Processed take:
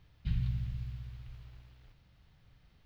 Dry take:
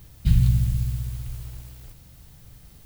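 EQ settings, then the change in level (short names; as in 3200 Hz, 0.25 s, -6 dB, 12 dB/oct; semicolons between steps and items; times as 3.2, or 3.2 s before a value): air absorption 310 m; tilt shelf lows -5.5 dB, about 1100 Hz; -9.0 dB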